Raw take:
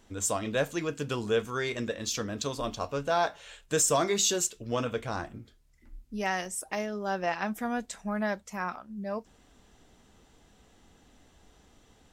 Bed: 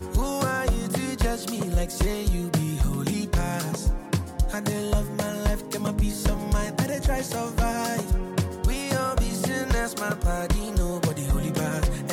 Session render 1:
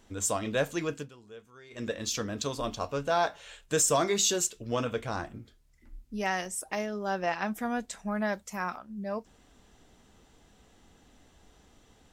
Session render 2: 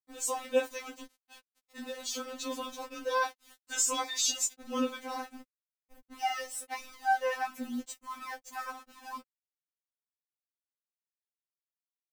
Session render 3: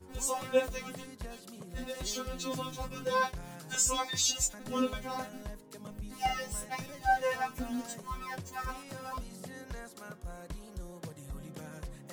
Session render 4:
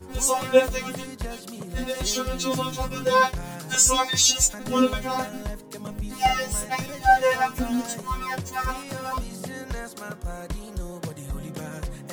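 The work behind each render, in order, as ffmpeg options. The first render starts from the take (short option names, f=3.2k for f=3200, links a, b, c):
-filter_complex "[0:a]asettb=1/sr,asplit=3[a][b][c];[a]atrim=end=8.334[d];[b]atrim=start=8.33:end=8.78,asetpts=PTS-STARTPTS,afade=t=in:d=0.004:c=qsin,afade=t=out:st=0.446:d=0.004:c=qsin,highshelf=f=6.6k:g=7[e];[c]atrim=start=8.776[f];[d][e]acrossfade=d=0.004:c1=hsin:c2=qsin[g];[g][f]acrossfade=d=0.004:c1=qsin:c2=hsin,asplit=3[h][i][j];[h]atrim=end=1.11,asetpts=PTS-STARTPTS,afade=t=out:st=0.93:d=0.18:silence=0.0891251[k];[i]atrim=start=1.11:end=1.7,asetpts=PTS-STARTPTS,volume=-21dB[l];[j]atrim=start=1.7,asetpts=PTS-STARTPTS,afade=t=in:d=0.18:silence=0.0891251[m];[k][l][m]concat=n=3:v=0:a=1"
-af "aeval=exprs='val(0)*gte(abs(val(0)),0.00891)':c=same,afftfilt=real='re*3.46*eq(mod(b,12),0)':imag='im*3.46*eq(mod(b,12),0)':win_size=2048:overlap=0.75"
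-filter_complex "[1:a]volume=-19dB[a];[0:a][a]amix=inputs=2:normalize=0"
-af "volume=10.5dB"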